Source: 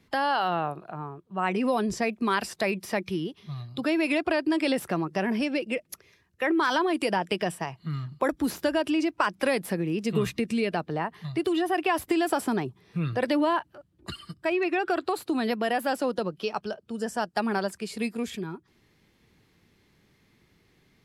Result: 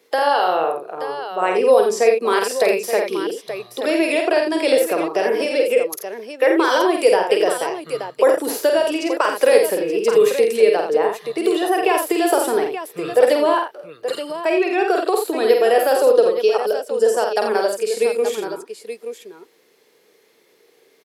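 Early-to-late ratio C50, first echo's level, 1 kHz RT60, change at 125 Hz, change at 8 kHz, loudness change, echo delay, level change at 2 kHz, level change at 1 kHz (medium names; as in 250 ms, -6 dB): no reverb, -4.5 dB, no reverb, under -10 dB, +12.0 dB, +10.0 dB, 49 ms, +6.0 dB, +8.0 dB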